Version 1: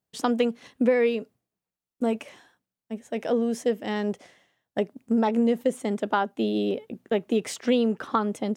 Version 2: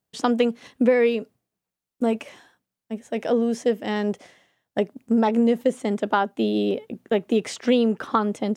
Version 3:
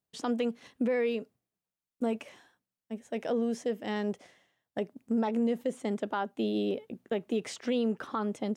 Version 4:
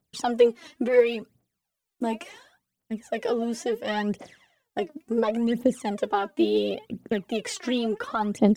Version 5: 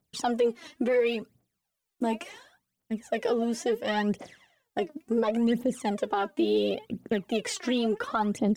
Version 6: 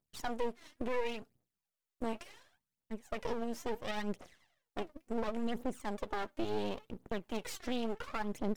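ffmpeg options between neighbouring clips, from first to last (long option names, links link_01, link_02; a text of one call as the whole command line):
ffmpeg -i in.wav -filter_complex "[0:a]acrossover=split=8000[link_01][link_02];[link_02]acompressor=threshold=-56dB:ratio=4:attack=1:release=60[link_03];[link_01][link_03]amix=inputs=2:normalize=0,volume=3dB" out.wav
ffmpeg -i in.wav -af "alimiter=limit=-13.5dB:level=0:latency=1,volume=-7.5dB" out.wav
ffmpeg -i in.wav -af "aphaser=in_gain=1:out_gain=1:delay=3.4:decay=0.75:speed=0.71:type=triangular,volume=4.5dB" out.wav
ffmpeg -i in.wav -af "alimiter=limit=-17dB:level=0:latency=1:release=66" out.wav
ffmpeg -i in.wav -af "aeval=exprs='max(val(0),0)':channel_layout=same,volume=-6.5dB" out.wav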